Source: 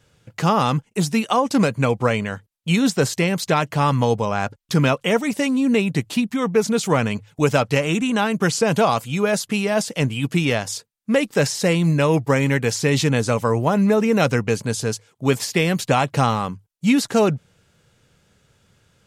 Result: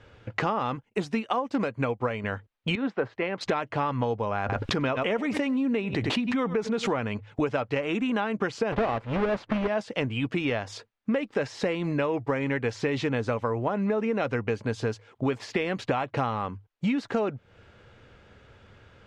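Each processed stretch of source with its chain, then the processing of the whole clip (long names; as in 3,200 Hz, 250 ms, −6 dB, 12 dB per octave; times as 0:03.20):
0:00.75–0:02.24: high-shelf EQ 9,000 Hz +7.5 dB + expander for the loud parts, over −29 dBFS
0:02.75–0:03.41: Bessel low-pass filter 1,900 Hz + low-shelf EQ 340 Hz −9 dB + multiband upward and downward expander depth 100%
0:04.40–0:07.01: single-tap delay 96 ms −23.5 dB + background raised ahead of every attack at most 25 dB per second
0:08.72–0:09.68: each half-wave held at its own peak + low-pass filter 1,900 Hz 6 dB per octave
whole clip: low-pass filter 2,500 Hz 12 dB per octave; parametric band 160 Hz −13.5 dB 0.46 octaves; downward compressor 6 to 1, threshold −34 dBFS; level +8.5 dB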